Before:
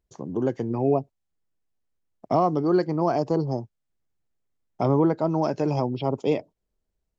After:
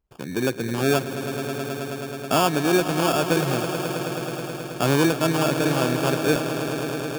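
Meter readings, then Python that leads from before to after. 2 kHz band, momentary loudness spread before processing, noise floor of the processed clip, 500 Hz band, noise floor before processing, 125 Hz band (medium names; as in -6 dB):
+17.5 dB, 6 LU, -35 dBFS, +2.0 dB, -80 dBFS, +2.0 dB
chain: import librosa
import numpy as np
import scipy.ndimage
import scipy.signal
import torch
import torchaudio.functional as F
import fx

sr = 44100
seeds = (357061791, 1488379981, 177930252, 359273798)

y = fx.sample_hold(x, sr, seeds[0], rate_hz=2000.0, jitter_pct=0)
y = fx.echo_swell(y, sr, ms=107, loudest=5, wet_db=-12.5)
y = y * 10.0 ** (1.0 / 20.0)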